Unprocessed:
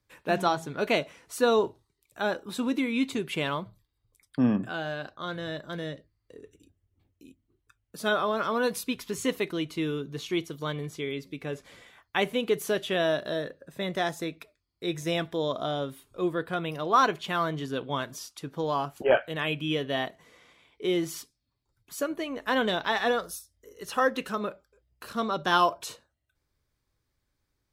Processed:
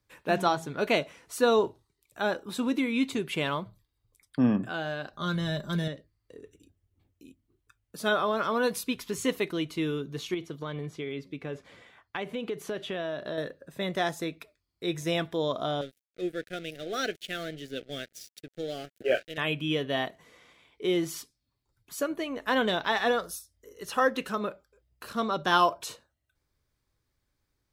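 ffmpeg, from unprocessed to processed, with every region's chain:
-filter_complex "[0:a]asettb=1/sr,asplit=3[a][b][c];[a]atrim=end=5.134[d];[b]atrim=start=5.13:end=5.88,asetpts=PTS-STARTPTS,afade=t=in:d=0.004:c=qsin,afade=t=out:st=0.746:d=0.004:c=qsin,bass=f=250:g=9,treble=f=4k:g=8,aecho=1:1:5:0.57,atrim=end_sample=33075[e];[c]atrim=start=5.876[f];[d][e]acrossfade=d=0.004:c1=hsin:c2=qsin[g];[g][f]acrossfade=d=0.004:c1=qsin:c2=hsin,asettb=1/sr,asplit=3[h][i][j];[h]atrim=end=10.344[k];[i]atrim=start=10.34:end=13.38,asetpts=PTS-STARTPTS,afade=t=in:d=0.004:c=qsin,afade=t=out:st=3.036:d=0.004:c=qsin,highpass=56,aemphasis=mode=reproduction:type=50kf,acompressor=threshold=-30dB:ratio=4:attack=3.2:release=140:knee=1:detection=peak[l];[j]atrim=start=13.376[m];[k][l]acrossfade=d=0.004:c1=hsin:c2=qsin[n];[n][m]acrossfade=d=0.004:c1=qsin:c2=hsin,asettb=1/sr,asplit=3[o][p][q];[o]atrim=end=15.814[r];[p]atrim=start=15.81:end=19.38,asetpts=PTS-STARTPTS,afade=t=in:d=0.004:c=qsin,afade=t=out:st=3.566:d=0.004:c=qsin,lowshelf=f=200:g=-11,aeval=exprs='sgn(val(0))*max(abs(val(0))-0.00631,0)':c=same,asuperstop=centerf=990:order=4:qfactor=0.95[s];[q]atrim=start=19.376[t];[r][s]acrossfade=d=0.004:c1=hsin:c2=qsin[u];[u][t]acrossfade=d=0.004:c1=qsin:c2=hsin"

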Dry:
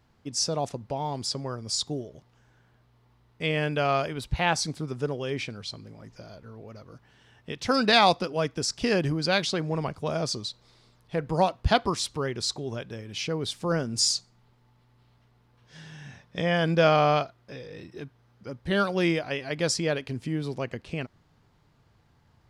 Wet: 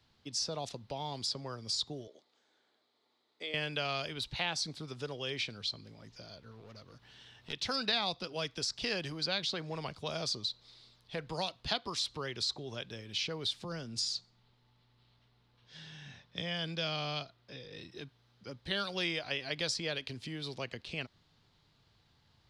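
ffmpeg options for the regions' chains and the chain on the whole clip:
-filter_complex "[0:a]asettb=1/sr,asplit=3[a][b][c];[a]atrim=end=2.074[d];[b]atrim=start=2.07:end=3.54,asetpts=PTS-STARTPTS,afade=t=in:d=0.004:c=qsin,afade=t=out:st=1.466:d=0.004:c=qsin,acompressor=threshold=-31dB:ratio=3:attack=3.2:release=140:knee=1:detection=peak,highpass=f=290:w=0.5412,highpass=f=290:w=1.3066,equalizer=f=1k:t=q:w=4:g=-5,equalizer=f=1.6k:t=q:w=4:g=-6,equalizer=f=2.8k:t=q:w=4:g=-10,equalizer=f=5.6k:t=q:w=4:g=-7,lowpass=f=8.7k:w=0.5412,lowpass=f=8.7k:w=1.3066[e];[c]atrim=start=3.536[f];[d][e]acrossfade=d=0.004:c1=hsin:c2=qsin[g];[g][f]acrossfade=d=0.004:c1=qsin:c2=hsin,asettb=1/sr,asplit=3[h][i][j];[h]atrim=end=6.514[k];[i]atrim=start=6.51:end=7.53,asetpts=PTS-STARTPTS,afade=t=in:d=0.004:c=qsin,afade=t=out:st=1.016:d=0.004:c=qsin,aeval=exprs='clip(val(0),-1,0.00708)':c=same,acompressor=mode=upward:threshold=-47dB:ratio=2.5:attack=3.2:release=140:knee=2.83:detection=peak[l];[j]atrim=start=7.526[m];[k][l]acrossfade=d=0.004:c1=hsin:c2=qsin[n];[n][m]acrossfade=d=0.004:c1=qsin:c2=hsin,asettb=1/sr,asplit=3[o][p][q];[o]atrim=end=13.644[r];[p]atrim=start=13.64:end=17.72,asetpts=PTS-STARTPTS,afade=t=in:d=0.004:c=qsin,afade=t=out:st=4.076:d=0.004:c=qsin,highshelf=f=4.6k:g=-6.5,acrossover=split=290|3000[s][t][u];[t]acompressor=threshold=-47dB:ratio=1.5:attack=3.2:release=140:knee=2.83:detection=peak[v];[s][v][u]amix=inputs=3:normalize=0[w];[q]atrim=start=17.716[x];[r][w]acrossfade=d=0.004:c1=hsin:c2=qsin[y];[y][x]acrossfade=d=0.004:c1=qsin:c2=hsin,equalizer=f=3.9k:w=1.1:g=14,acrossover=split=130|470|2100[z][aa][ab][ac];[z]acompressor=threshold=-43dB:ratio=4[ad];[aa]acompressor=threshold=-37dB:ratio=4[ae];[ab]acompressor=threshold=-30dB:ratio=4[af];[ac]acompressor=threshold=-27dB:ratio=4[ag];[ad][ae][af][ag]amix=inputs=4:normalize=0,volume=-7.5dB"

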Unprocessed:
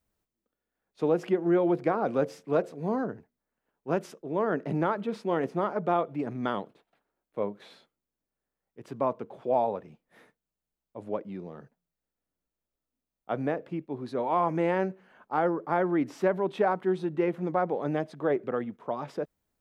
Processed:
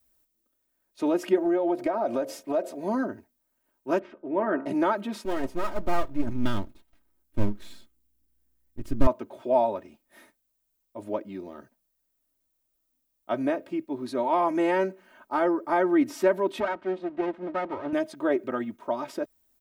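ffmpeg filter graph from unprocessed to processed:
-filter_complex "[0:a]asettb=1/sr,asplit=3[a][b][c];[a]atrim=end=1.374[d];[b]atrim=start=1.37:end=2.84,asetpts=PTS-STARTPTS,afade=t=in:d=0.004:c=qsin,afade=t=out:st=1.466:d=0.004:c=qsin,equalizer=f=660:w=1.7:g=9,acompressor=threshold=-26dB:ratio=4:attack=3.2:release=140:knee=1:detection=peak[e];[c]atrim=start=2.836[f];[d][e]acrossfade=d=0.004:c1=hsin:c2=qsin[g];[g][f]acrossfade=d=0.004:c1=qsin:c2=hsin,asettb=1/sr,asplit=3[h][i][j];[h]atrim=end=3.994[k];[i]atrim=start=3.99:end=4.66,asetpts=PTS-STARTPTS,afade=t=in:d=0.004:c=qsin,afade=t=out:st=0.666:d=0.004:c=qsin,lowpass=f=2.5k:w=0.5412,lowpass=f=2.5k:w=1.3066,bandreject=f=69.33:t=h:w=4,bandreject=f=138.66:t=h:w=4,bandreject=f=207.99:t=h:w=4,bandreject=f=277.32:t=h:w=4,bandreject=f=346.65:t=h:w=4,bandreject=f=415.98:t=h:w=4,bandreject=f=485.31:t=h:w=4,bandreject=f=554.64:t=h:w=4,bandreject=f=623.97:t=h:w=4,bandreject=f=693.3:t=h:w=4,bandreject=f=762.63:t=h:w=4,bandreject=f=831.96:t=h:w=4,bandreject=f=901.29:t=h:w=4,bandreject=f=970.62:t=h:w=4,bandreject=f=1.03995k:t=h:w=4,bandreject=f=1.10928k:t=h:w=4,bandreject=f=1.17861k:t=h:w=4,bandreject=f=1.24794k:t=h:w=4,bandreject=f=1.31727k:t=h:w=4,bandreject=f=1.3866k:t=h:w=4,bandreject=f=1.45593k:t=h:w=4,bandreject=f=1.52526k:t=h:w=4[l];[j]atrim=start=4.656[m];[k][l]acrossfade=d=0.004:c1=hsin:c2=qsin[n];[n][m]acrossfade=d=0.004:c1=qsin:c2=hsin,asettb=1/sr,asplit=3[o][p][q];[o]atrim=end=5.254[r];[p]atrim=start=5.25:end=9.07,asetpts=PTS-STARTPTS,afade=t=in:d=0.004:c=qsin,afade=t=out:st=3.816:d=0.004:c=qsin,aeval=exprs='if(lt(val(0),0),0.251*val(0),val(0))':c=same,asubboost=boost=11:cutoff=210[s];[q]atrim=start=9.066[t];[r][s]acrossfade=d=0.004:c1=hsin:c2=qsin[u];[u][t]acrossfade=d=0.004:c1=qsin:c2=hsin,asettb=1/sr,asplit=3[v][w][x];[v]atrim=end=16.604[y];[w]atrim=start=16.6:end=17.93,asetpts=PTS-STARTPTS,afade=t=in:d=0.004:c=qsin,afade=t=out:st=1.326:d=0.004:c=qsin,aeval=exprs='max(val(0),0)':c=same,highpass=140,lowpass=2.4k[z];[x]atrim=start=17.926[aa];[y][z]acrossfade=d=0.004:c1=hsin:c2=qsin[ab];[ab][aa]acrossfade=d=0.004:c1=qsin:c2=hsin,aemphasis=mode=production:type=50kf,aecho=1:1:3.2:0.87"

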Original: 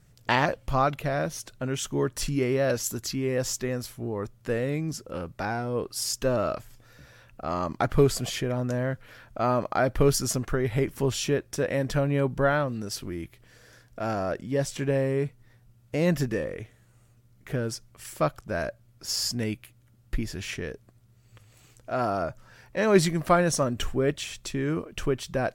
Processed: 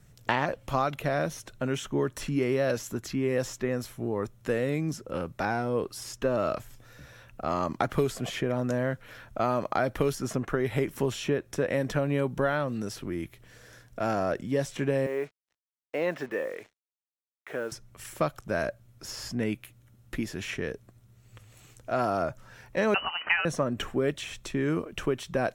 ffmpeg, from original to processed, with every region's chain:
-filter_complex "[0:a]asettb=1/sr,asplit=3[a][b][c];[a]atrim=end=15.064[d];[b]atrim=start=15.06:end=17.72,asetpts=PTS-STARTPTS,afade=t=in:d=0.004:c=qsin,afade=t=out:st=2.656:d=0.004:c=qsin,highpass=480,lowpass=2.5k,acrusher=bits=8:mix=0:aa=0.5[e];[c]atrim=start=17.716[f];[d][e]acrossfade=d=0.004:c1=hsin:c2=qsin[g];[g][f]acrossfade=d=0.004:c1=qsin:c2=hsin,asettb=1/sr,asplit=3[h][i][j];[h]atrim=end=22.944[k];[i]atrim=start=22.94:end=23.45,asetpts=PTS-STARTPTS,afade=t=in:d=0.004:c=qsin,afade=t=out:st=0.506:d=0.004:c=qsin,tiltshelf=f=820:g=-7.5,lowpass=f=2.6k:t=q:w=0.5098,lowpass=f=2.6k:t=q:w=0.6013,lowpass=f=2.6k:t=q:w=0.9,lowpass=f=2.6k:t=q:w=2.563,afreqshift=-3100[l];[j]atrim=start=23.446[m];[k][l]acrossfade=d=0.004:c1=hsin:c2=qsin[n];[n][m]acrossfade=d=0.004:c1=qsin:c2=hsin,bandreject=f=4.7k:w=12,acrossover=split=140|2800[o][p][q];[o]acompressor=threshold=-46dB:ratio=4[r];[p]acompressor=threshold=-25dB:ratio=4[s];[q]acompressor=threshold=-45dB:ratio=4[t];[r][s][t]amix=inputs=3:normalize=0,volume=2dB"

